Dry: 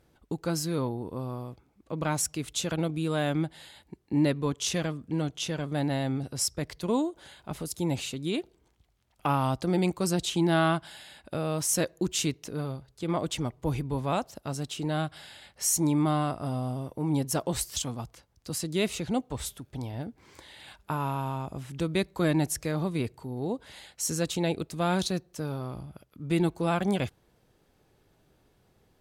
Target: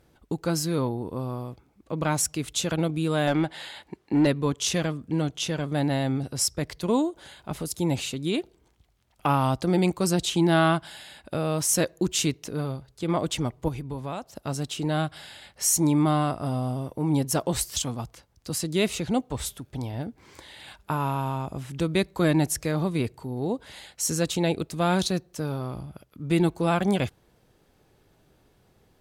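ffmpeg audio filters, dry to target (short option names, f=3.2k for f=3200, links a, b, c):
-filter_complex "[0:a]asettb=1/sr,asplit=3[a][b][c];[a]atrim=end=3.274[d];[b]atrim=start=3.27:end=4.27,asetpts=PTS-STARTPTS,afade=t=in:d=0.004:c=qsin,afade=t=out:st=0.996:d=0.004:c=qsin,asplit=2[e][f];[f]highpass=f=720:p=1,volume=15dB,asoftclip=type=tanh:threshold=-16dB[g];[e][g]amix=inputs=2:normalize=0,lowpass=f=2.8k:p=1,volume=-6dB[h];[c]atrim=start=4.266[i];[d][h]acrossfade=d=0.004:c1=hsin:c2=qsin[j];[j][i]acrossfade=d=0.004:c1=qsin:c2=hsin,asettb=1/sr,asplit=3[k][l][m];[k]atrim=end=13.684[n];[l]atrim=start=13.68:end=14.36,asetpts=PTS-STARTPTS,afade=t=in:d=0.004:c=qsin,afade=t=out:st=0.676:d=0.004:c=qsin,acompressor=threshold=-36dB:ratio=3[o];[m]atrim=start=14.356[p];[n][o]acrossfade=d=0.004:c1=hsin:c2=qsin[q];[q][p]acrossfade=d=0.004:c1=qsin:c2=hsin,volume=3.5dB"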